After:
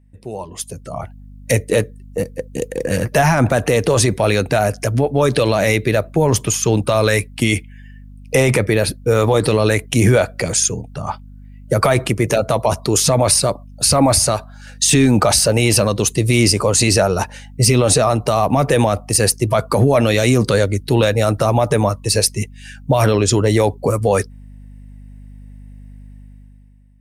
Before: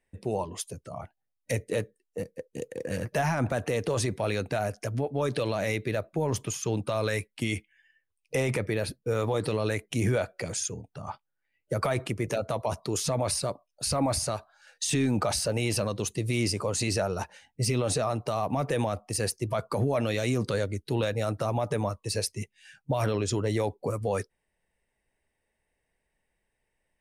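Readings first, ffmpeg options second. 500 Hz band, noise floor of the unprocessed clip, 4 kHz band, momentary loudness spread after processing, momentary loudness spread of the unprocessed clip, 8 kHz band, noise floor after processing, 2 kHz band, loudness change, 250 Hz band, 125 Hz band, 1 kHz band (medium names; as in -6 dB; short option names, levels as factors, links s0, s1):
+13.0 dB, -81 dBFS, +14.5 dB, 12 LU, 10 LU, +15.5 dB, -38 dBFS, +13.5 dB, +14.0 dB, +13.0 dB, +13.5 dB, +13.0 dB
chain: -af "aeval=exprs='val(0)+0.00316*(sin(2*PI*50*n/s)+sin(2*PI*2*50*n/s)/2+sin(2*PI*3*50*n/s)/3+sin(2*PI*4*50*n/s)/4+sin(2*PI*5*50*n/s)/5)':c=same,dynaudnorm=f=170:g=9:m=5.01,highshelf=f=7700:g=5"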